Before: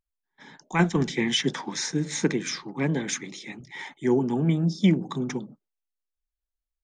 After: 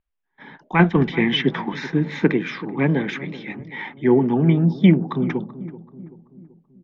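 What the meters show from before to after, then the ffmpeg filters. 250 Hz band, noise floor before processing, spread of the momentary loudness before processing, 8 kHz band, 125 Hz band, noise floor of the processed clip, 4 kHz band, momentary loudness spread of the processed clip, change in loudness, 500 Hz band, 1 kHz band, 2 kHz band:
+6.5 dB, below −85 dBFS, 15 LU, below −20 dB, +6.5 dB, −74 dBFS, +1.5 dB, 17 LU, +6.0 dB, +6.5 dB, +6.5 dB, +6.5 dB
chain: -filter_complex "[0:a]lowpass=frequency=3000:width=0.5412,lowpass=frequency=3000:width=1.3066,asplit=2[link_01][link_02];[link_02]adelay=383,lowpass=frequency=940:poles=1,volume=-15dB,asplit=2[link_03][link_04];[link_04]adelay=383,lowpass=frequency=940:poles=1,volume=0.52,asplit=2[link_05][link_06];[link_06]adelay=383,lowpass=frequency=940:poles=1,volume=0.52,asplit=2[link_07][link_08];[link_08]adelay=383,lowpass=frequency=940:poles=1,volume=0.52,asplit=2[link_09][link_10];[link_10]adelay=383,lowpass=frequency=940:poles=1,volume=0.52[link_11];[link_03][link_05][link_07][link_09][link_11]amix=inputs=5:normalize=0[link_12];[link_01][link_12]amix=inputs=2:normalize=0,volume=6.5dB"

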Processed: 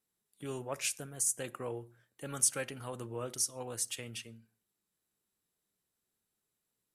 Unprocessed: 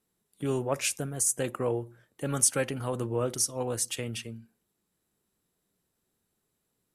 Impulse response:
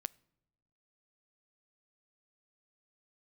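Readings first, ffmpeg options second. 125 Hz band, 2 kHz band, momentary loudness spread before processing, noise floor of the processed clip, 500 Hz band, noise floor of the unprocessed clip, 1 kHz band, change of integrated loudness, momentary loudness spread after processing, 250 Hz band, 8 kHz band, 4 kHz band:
−11.5 dB, −6.0 dB, 13 LU, below −85 dBFS, −10.0 dB, −80 dBFS, −8.0 dB, −6.0 dB, 16 LU, −11.0 dB, −4.5 dB, −5.0 dB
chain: -filter_complex "[0:a]tiltshelf=frequency=970:gain=-3.5[link_01];[1:a]atrim=start_sample=2205,atrim=end_sample=6174,asetrate=37926,aresample=44100[link_02];[link_01][link_02]afir=irnorm=-1:irlink=0,volume=-6.5dB"

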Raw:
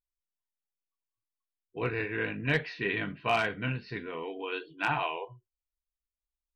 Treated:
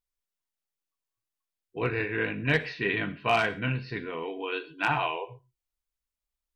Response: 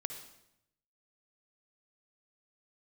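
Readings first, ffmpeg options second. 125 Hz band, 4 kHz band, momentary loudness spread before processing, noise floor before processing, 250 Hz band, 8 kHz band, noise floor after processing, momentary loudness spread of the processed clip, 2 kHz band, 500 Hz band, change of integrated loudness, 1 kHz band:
+3.0 dB, +3.0 dB, 10 LU, below −85 dBFS, +3.0 dB, can't be measured, below −85 dBFS, 10 LU, +3.0 dB, +3.0 dB, +3.0 dB, +3.0 dB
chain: -filter_complex "[0:a]asplit=2[link_01][link_02];[1:a]atrim=start_sample=2205,afade=type=out:start_time=0.19:duration=0.01,atrim=end_sample=8820[link_03];[link_02][link_03]afir=irnorm=-1:irlink=0,volume=-6.5dB[link_04];[link_01][link_04]amix=inputs=2:normalize=0"

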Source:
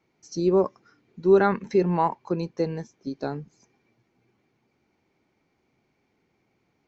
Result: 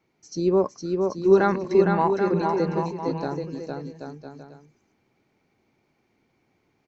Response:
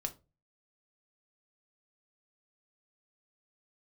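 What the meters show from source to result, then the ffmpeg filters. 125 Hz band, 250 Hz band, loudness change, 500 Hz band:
+2.0 dB, +2.0 dB, +1.0 dB, +2.5 dB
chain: -af "aecho=1:1:460|782|1007|1165|1276:0.631|0.398|0.251|0.158|0.1"

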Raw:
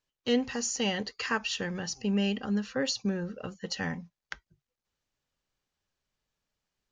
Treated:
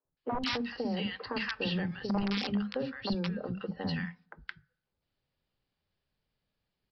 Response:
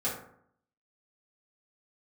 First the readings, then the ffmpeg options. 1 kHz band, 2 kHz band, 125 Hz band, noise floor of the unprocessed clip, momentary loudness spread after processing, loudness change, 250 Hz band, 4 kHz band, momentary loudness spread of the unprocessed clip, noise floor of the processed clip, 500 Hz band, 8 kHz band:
0.0 dB, −3.0 dB, +0.5 dB, below −85 dBFS, 9 LU, −3.0 dB, −2.0 dB, −3.0 dB, 13 LU, below −85 dBFS, −3.5 dB, below −20 dB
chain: -filter_complex "[0:a]lowshelf=frequency=82:gain=-9.5,acrossover=split=3800[link_01][link_02];[link_02]acompressor=threshold=-44dB:ratio=4:attack=1:release=60[link_03];[link_01][link_03]amix=inputs=2:normalize=0,lowshelf=frequency=360:gain=10,aresample=11025,aeval=exprs='(mod(6.31*val(0)+1,2)-1)/6.31':channel_layout=same,aresample=44100,acompressor=threshold=-27dB:ratio=8,acrossover=split=280|1200[link_04][link_05][link_06];[link_04]adelay=50[link_07];[link_06]adelay=170[link_08];[link_07][link_05][link_08]amix=inputs=3:normalize=0,asplit=2[link_09][link_10];[1:a]atrim=start_sample=2205[link_11];[link_10][link_11]afir=irnorm=-1:irlink=0,volume=-28.5dB[link_12];[link_09][link_12]amix=inputs=2:normalize=0" -ar 48000 -c:a aac -b:a 48k

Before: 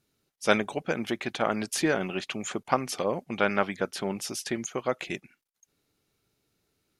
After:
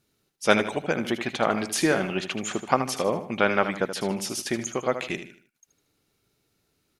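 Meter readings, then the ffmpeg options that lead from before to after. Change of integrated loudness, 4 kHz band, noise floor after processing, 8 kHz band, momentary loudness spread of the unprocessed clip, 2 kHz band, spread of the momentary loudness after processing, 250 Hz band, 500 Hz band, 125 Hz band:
+3.5 dB, +3.5 dB, −73 dBFS, +3.5 dB, 7 LU, +3.5 dB, 7 LU, +3.5 dB, +3.5 dB, +3.5 dB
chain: -af "aecho=1:1:77|154|231|308:0.316|0.114|0.041|0.0148,volume=3dB"

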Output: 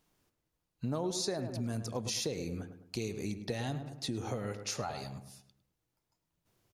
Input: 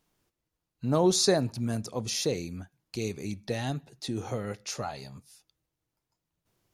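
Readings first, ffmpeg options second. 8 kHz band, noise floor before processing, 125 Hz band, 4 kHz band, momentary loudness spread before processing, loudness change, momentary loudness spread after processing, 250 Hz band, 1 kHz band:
−7.0 dB, below −85 dBFS, −5.0 dB, −6.5 dB, 16 LU, −7.5 dB, 8 LU, −6.5 dB, −6.5 dB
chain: -filter_complex "[0:a]asplit=2[link_01][link_02];[link_02]adelay=105,lowpass=frequency=1900:poles=1,volume=-10.5dB,asplit=2[link_03][link_04];[link_04]adelay=105,lowpass=frequency=1900:poles=1,volume=0.44,asplit=2[link_05][link_06];[link_06]adelay=105,lowpass=frequency=1900:poles=1,volume=0.44,asplit=2[link_07][link_08];[link_08]adelay=105,lowpass=frequency=1900:poles=1,volume=0.44,asplit=2[link_09][link_10];[link_10]adelay=105,lowpass=frequency=1900:poles=1,volume=0.44[link_11];[link_01][link_03][link_05][link_07][link_09][link_11]amix=inputs=6:normalize=0,acompressor=threshold=-32dB:ratio=6"

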